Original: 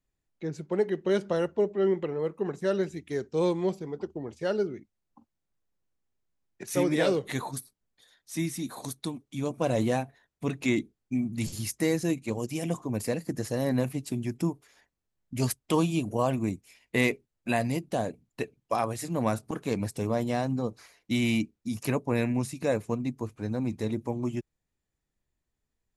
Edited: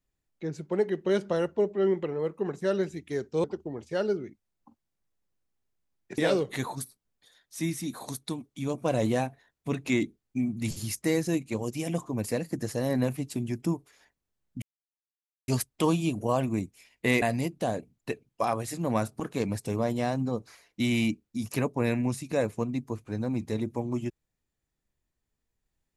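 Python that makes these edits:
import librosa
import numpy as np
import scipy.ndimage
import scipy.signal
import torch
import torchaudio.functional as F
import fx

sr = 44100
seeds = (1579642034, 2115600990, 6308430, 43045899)

y = fx.edit(x, sr, fx.cut(start_s=3.44, length_s=0.5),
    fx.cut(start_s=6.68, length_s=0.26),
    fx.insert_silence(at_s=15.38, length_s=0.86),
    fx.cut(start_s=17.12, length_s=0.41), tone=tone)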